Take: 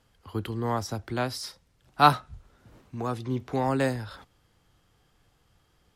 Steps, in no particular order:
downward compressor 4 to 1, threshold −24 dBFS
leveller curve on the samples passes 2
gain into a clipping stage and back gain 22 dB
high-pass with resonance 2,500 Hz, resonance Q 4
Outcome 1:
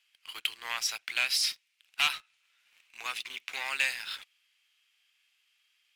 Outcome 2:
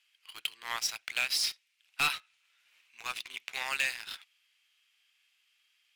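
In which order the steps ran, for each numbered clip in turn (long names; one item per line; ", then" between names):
downward compressor, then gain into a clipping stage and back, then high-pass with resonance, then leveller curve on the samples
high-pass with resonance, then leveller curve on the samples, then downward compressor, then gain into a clipping stage and back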